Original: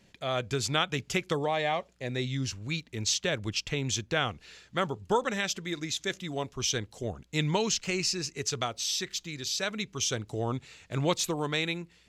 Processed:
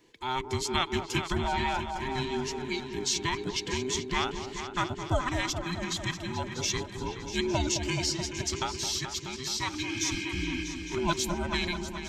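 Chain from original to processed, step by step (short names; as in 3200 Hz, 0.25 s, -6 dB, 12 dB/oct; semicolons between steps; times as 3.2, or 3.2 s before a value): band inversion scrambler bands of 500 Hz; spectral repair 9.86–10.6, 280–3400 Hz before; repeats that get brighter 0.214 s, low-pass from 750 Hz, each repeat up 2 oct, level -6 dB; gain -1 dB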